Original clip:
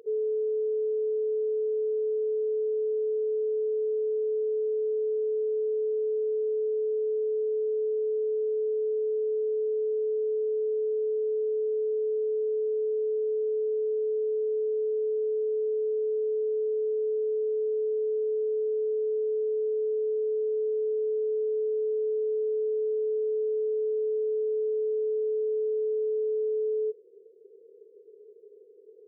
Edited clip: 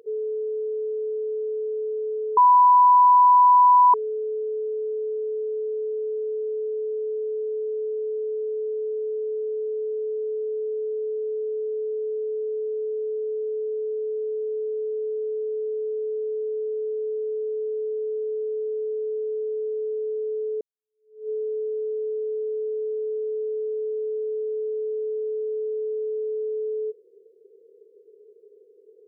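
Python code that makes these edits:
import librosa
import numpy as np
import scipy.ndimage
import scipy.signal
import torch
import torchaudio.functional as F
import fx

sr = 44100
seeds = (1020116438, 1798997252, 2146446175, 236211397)

y = fx.edit(x, sr, fx.bleep(start_s=2.37, length_s=1.57, hz=990.0, db=-11.0),
    fx.fade_in_span(start_s=20.61, length_s=0.68, curve='exp'), tone=tone)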